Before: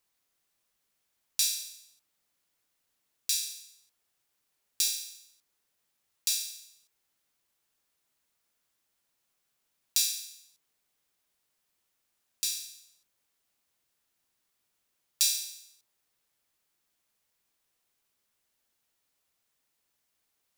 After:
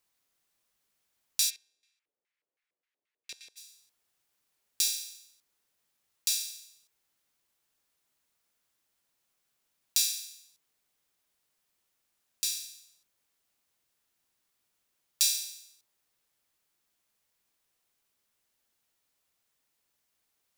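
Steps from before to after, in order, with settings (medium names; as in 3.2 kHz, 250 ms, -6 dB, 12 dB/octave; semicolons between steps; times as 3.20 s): 1.49–3.56 s: LFO band-pass square 1.6 Hz -> 7.1 Hz 460–2100 Hz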